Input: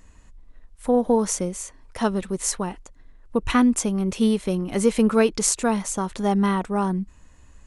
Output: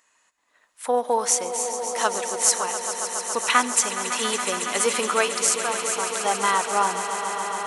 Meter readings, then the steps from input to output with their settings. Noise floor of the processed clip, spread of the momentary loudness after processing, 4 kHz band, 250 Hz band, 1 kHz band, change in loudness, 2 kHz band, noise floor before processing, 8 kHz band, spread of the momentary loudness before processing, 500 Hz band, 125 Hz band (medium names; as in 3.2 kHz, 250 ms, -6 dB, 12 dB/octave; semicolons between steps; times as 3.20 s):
-66 dBFS, 6 LU, +7.5 dB, -15.0 dB, +5.5 dB, 0.0 dB, +7.5 dB, -51 dBFS, +6.0 dB, 11 LU, -2.5 dB, under -15 dB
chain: high-pass 870 Hz 12 dB/octave; level rider gain up to 11 dB; echo with a slow build-up 139 ms, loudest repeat 5, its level -12 dB; trim -2.5 dB